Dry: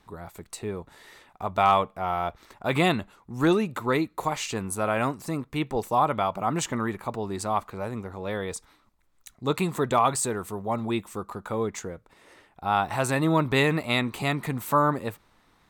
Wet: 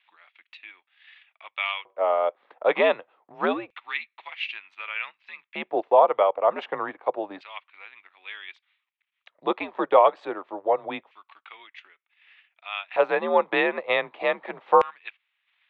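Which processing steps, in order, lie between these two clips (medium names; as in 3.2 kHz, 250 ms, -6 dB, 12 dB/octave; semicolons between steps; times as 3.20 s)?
transient shaper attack +3 dB, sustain -9 dB; mistuned SSB -92 Hz 220–3400 Hz; LFO high-pass square 0.27 Hz 520–2500 Hz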